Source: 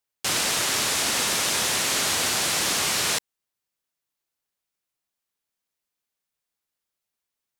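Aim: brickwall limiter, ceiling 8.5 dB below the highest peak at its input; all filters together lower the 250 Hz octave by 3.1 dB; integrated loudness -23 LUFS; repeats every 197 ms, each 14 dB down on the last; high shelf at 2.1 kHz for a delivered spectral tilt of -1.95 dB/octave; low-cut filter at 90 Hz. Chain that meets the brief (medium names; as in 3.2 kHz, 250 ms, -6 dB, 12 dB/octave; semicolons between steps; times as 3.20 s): high-pass 90 Hz; peaking EQ 250 Hz -4 dB; treble shelf 2.1 kHz -7 dB; peak limiter -24 dBFS; feedback delay 197 ms, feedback 20%, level -14 dB; trim +8.5 dB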